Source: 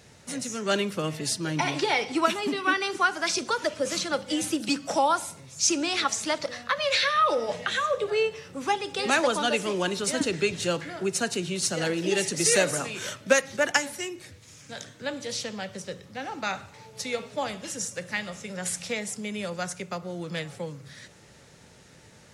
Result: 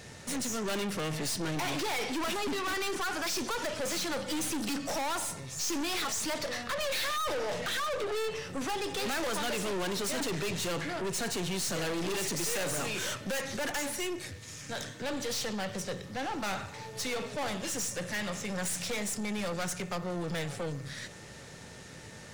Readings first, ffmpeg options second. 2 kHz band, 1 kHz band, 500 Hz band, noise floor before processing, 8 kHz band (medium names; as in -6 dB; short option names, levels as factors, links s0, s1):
-7.0 dB, -7.5 dB, -6.5 dB, -53 dBFS, -4.5 dB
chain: -af "aeval=exprs='(tanh(79.4*val(0)+0.4)-tanh(0.4))/79.4':c=same,aeval=exprs='val(0)+0.000631*sin(2*PI*1800*n/s)':c=same,volume=2.11"